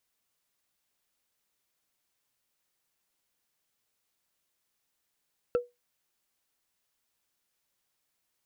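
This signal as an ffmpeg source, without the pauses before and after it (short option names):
-f lavfi -i "aevalsrc='0.112*pow(10,-3*t/0.2)*sin(2*PI*486*t)+0.0335*pow(10,-3*t/0.059)*sin(2*PI*1339.9*t)+0.01*pow(10,-3*t/0.026)*sin(2*PI*2626.3*t)+0.00299*pow(10,-3*t/0.014)*sin(2*PI*4341.4*t)+0.000891*pow(10,-3*t/0.009)*sin(2*PI*6483.2*t)':d=0.45:s=44100"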